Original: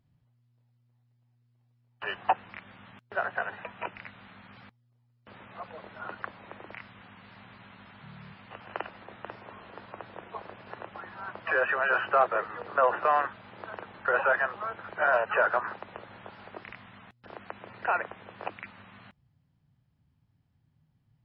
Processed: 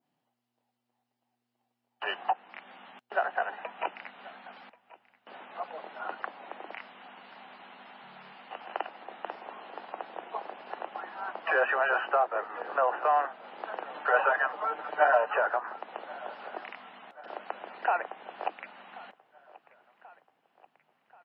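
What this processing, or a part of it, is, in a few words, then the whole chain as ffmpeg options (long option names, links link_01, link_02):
laptop speaker: -filter_complex "[0:a]highpass=frequency=250:width=0.5412,highpass=frequency=250:width=1.3066,equalizer=frequency=770:width_type=o:width=0.47:gain=9,equalizer=frequency=2900:width_type=o:width=0.21:gain=4.5,alimiter=limit=-16dB:level=0:latency=1:release=422,adynamicequalizer=threshold=0.00355:dfrequency=3800:dqfactor=0.93:tfrequency=3800:tqfactor=0.93:attack=5:release=100:ratio=0.375:range=2.5:mode=cutabove:tftype=bell,asettb=1/sr,asplit=3[link_01][link_02][link_03];[link_01]atrim=end=13.894[link_04];[link_02]atrim=start=13.89:end=15.31,asetpts=PTS-STARTPTS,afade=type=in:duration=0.004:curve=qsin,afade=type=out:start_time=1.416:duration=0.004:curve=qsin,aecho=1:1:6.7:1,atrim=end_sample=62622[link_05];[link_03]atrim=start=15.306[link_06];[link_04][link_05]acrossfade=duration=0.004:curve1=hsin:curve2=qsin[link_07];[link_07][link_06]acrossfade=duration=0.004:curve1=qsin:curve2=hsin,aecho=1:1:1084|2168|3252|4336:0.0891|0.049|0.027|0.0148"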